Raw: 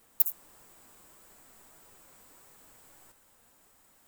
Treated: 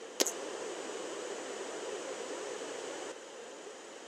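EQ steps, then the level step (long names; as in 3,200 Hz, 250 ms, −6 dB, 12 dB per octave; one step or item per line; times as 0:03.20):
loudspeaker in its box 280–6,900 Hz, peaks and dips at 510 Hz +5 dB, 1,800 Hz +4 dB, 3,000 Hz +8 dB, 6,400 Hz +7 dB
parametric band 400 Hz +14.5 dB 0.99 octaves
+14.0 dB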